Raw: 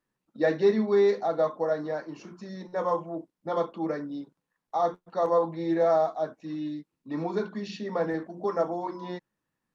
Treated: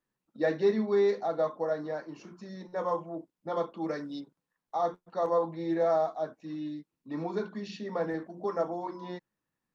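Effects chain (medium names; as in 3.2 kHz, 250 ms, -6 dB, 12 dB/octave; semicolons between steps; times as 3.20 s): 3.77–4.19 s: peaking EQ 5.1 kHz +4 dB -> +14.5 dB 2.3 oct; trim -3.5 dB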